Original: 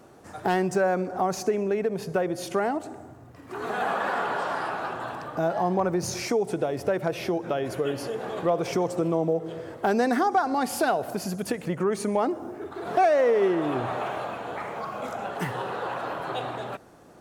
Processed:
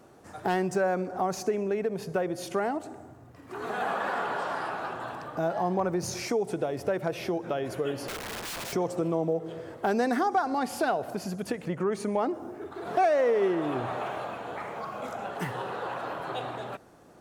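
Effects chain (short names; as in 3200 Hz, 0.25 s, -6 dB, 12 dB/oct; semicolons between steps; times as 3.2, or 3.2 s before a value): 8.08–8.73 wrapped overs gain 28.5 dB; 10.59–12.34 high shelf 7400 Hz -7 dB; gain -3 dB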